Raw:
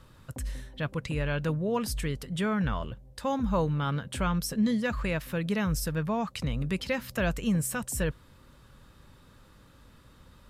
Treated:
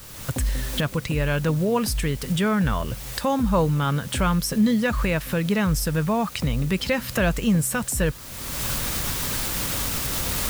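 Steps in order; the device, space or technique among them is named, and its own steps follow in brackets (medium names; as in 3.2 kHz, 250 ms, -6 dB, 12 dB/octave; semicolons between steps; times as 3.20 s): cheap recorder with automatic gain (white noise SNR 21 dB; recorder AGC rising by 31 dB/s); trim +6.5 dB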